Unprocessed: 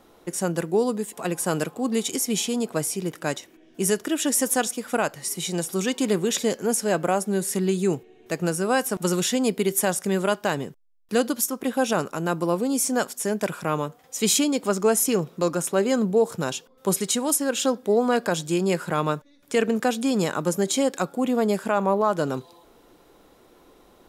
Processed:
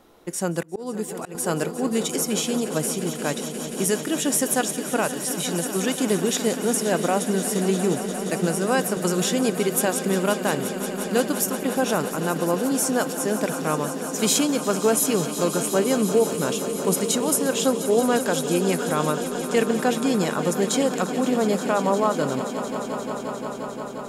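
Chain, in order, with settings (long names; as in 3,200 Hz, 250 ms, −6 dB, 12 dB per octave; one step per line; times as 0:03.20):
echo that builds up and dies away 176 ms, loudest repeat 5, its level −14 dB
0:00.62–0:01.35: volume swells 243 ms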